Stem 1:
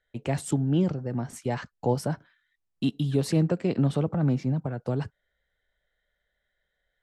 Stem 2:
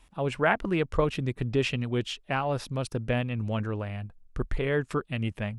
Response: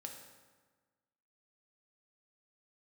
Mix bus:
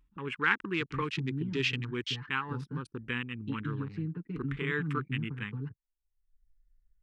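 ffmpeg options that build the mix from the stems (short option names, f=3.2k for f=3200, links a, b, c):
-filter_complex "[0:a]aecho=1:1:6.8:0.89,acompressor=threshold=-19dB:ratio=6,lowpass=2.4k,adelay=650,volume=-12dB[a];[1:a]highpass=f=560:p=1,afwtdn=0.00794,volume=1.5dB[b];[a][b]amix=inputs=2:normalize=0,asuperstop=centerf=640:order=4:qfactor=0.9,anlmdn=0.00251,acompressor=mode=upward:threshold=-42dB:ratio=2.5"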